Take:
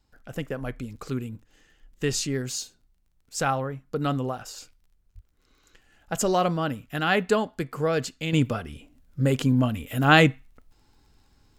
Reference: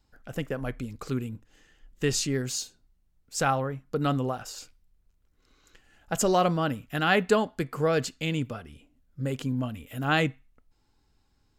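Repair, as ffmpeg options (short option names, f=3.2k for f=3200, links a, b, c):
-filter_complex "[0:a]adeclick=t=4,asplit=3[a][b][c];[a]afade=t=out:st=5.14:d=0.02[d];[b]highpass=f=140:w=0.5412,highpass=f=140:w=1.3066,afade=t=in:st=5.14:d=0.02,afade=t=out:st=5.26:d=0.02[e];[c]afade=t=in:st=5.26:d=0.02[f];[d][e][f]amix=inputs=3:normalize=0,asetnsamples=n=441:p=0,asendcmd='8.33 volume volume -8dB',volume=0dB"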